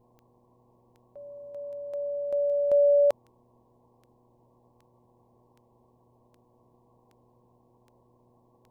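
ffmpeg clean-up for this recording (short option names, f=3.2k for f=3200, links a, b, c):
-af "adeclick=t=4,bandreject=f=121:t=h:w=4,bandreject=f=242:t=h:w=4,bandreject=f=363:t=h:w=4,bandreject=f=484:t=h:w=4,afwtdn=0.002"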